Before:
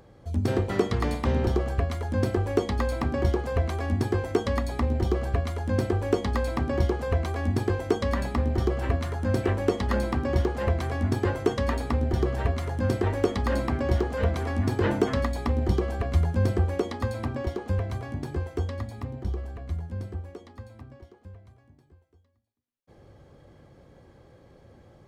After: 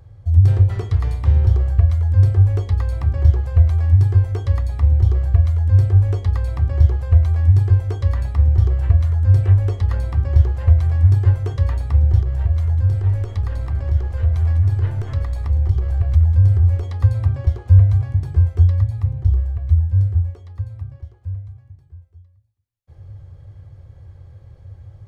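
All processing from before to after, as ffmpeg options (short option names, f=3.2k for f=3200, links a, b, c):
-filter_complex "[0:a]asettb=1/sr,asplit=3[a][b][c];[a]atrim=end=12.204[d];[b]atrim=start=12.2:end=16.83,asetpts=PTS-STARTPTS,afade=t=in:d=0.004:c=qsin,afade=t=out:st=4.626:d=0.004:c=qsin,aeval=exprs='if(lt(val(0),0),0.708*val(0),val(0))':c=same,acompressor=threshold=-25dB:ratio=2.5:attack=3.2:release=140:knee=1:detection=peak,aecho=1:1:196:0.237,atrim=end_sample=204183[e];[c]atrim=start=16.826[f];[d][e]acrossfade=d=0.004:c1=hsin:c2=qsin[g];[g][f]acrossfade=d=0.004:c1=qsin:c2=hsin,lowshelf=f=150:t=q:w=3:g=14,dynaudnorm=f=790:g=13:m=11.5dB,bandreject=f=58.66:t=h:w=4,bandreject=f=117.32:t=h:w=4,bandreject=f=175.98:t=h:w=4,bandreject=f=234.64:t=h:w=4,bandreject=f=293.3:t=h:w=4,bandreject=f=351.96:t=h:w=4,bandreject=f=410.62:t=h:w=4,bandreject=f=469.28:t=h:w=4,bandreject=f=527.94:t=h:w=4,bandreject=f=586.6:t=h:w=4,bandreject=f=645.26:t=h:w=4,volume=-1dB"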